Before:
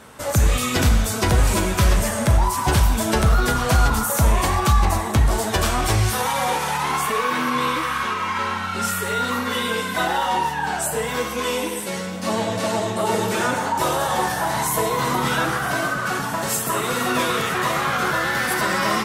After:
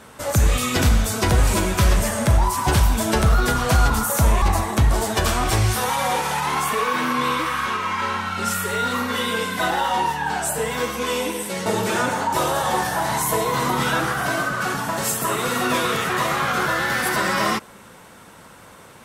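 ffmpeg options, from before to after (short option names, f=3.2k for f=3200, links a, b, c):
-filter_complex "[0:a]asplit=3[a][b][c];[a]atrim=end=4.422[d];[b]atrim=start=4.788:end=12.032[e];[c]atrim=start=13.108[f];[d][e]acrossfade=d=0.004:c1=hsin:c2=hsin[g];[g][f]acrossfade=d=0.004:c1=hsin:c2=hsin"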